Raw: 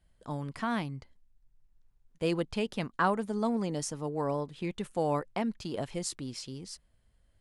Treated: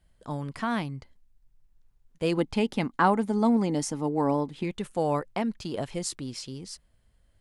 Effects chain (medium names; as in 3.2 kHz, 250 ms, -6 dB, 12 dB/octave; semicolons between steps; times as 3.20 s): 2.37–4.64 s: small resonant body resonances 270/830/2100 Hz, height 8 dB, ringing for 25 ms; trim +3 dB